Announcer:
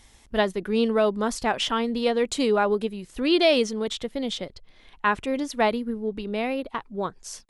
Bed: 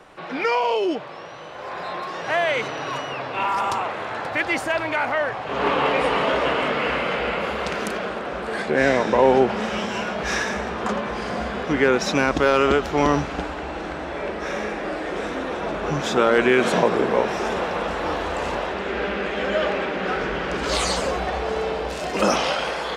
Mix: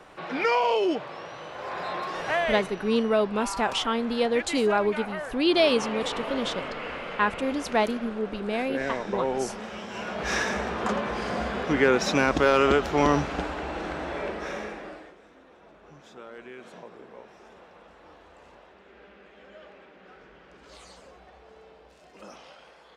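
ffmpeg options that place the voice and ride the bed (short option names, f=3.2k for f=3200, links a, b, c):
-filter_complex "[0:a]adelay=2150,volume=-1.5dB[a];[1:a]volume=7.5dB,afade=t=out:st=2.2:d=0.56:silence=0.316228,afade=t=in:st=9.86:d=0.53:silence=0.334965,afade=t=out:st=14.11:d=1.05:silence=0.0630957[b];[a][b]amix=inputs=2:normalize=0"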